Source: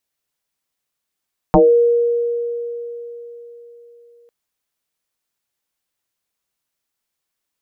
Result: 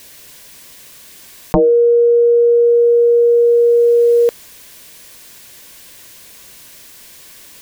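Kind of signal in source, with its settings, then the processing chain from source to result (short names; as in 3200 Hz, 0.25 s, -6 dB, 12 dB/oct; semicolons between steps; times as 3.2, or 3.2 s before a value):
FM tone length 2.75 s, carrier 473 Hz, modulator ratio 0.31, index 4, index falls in 0.27 s exponential, decay 3.96 s, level -6 dB
bell 810 Hz -8.5 dB 0.32 oct; notch 1300 Hz, Q 6; fast leveller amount 100%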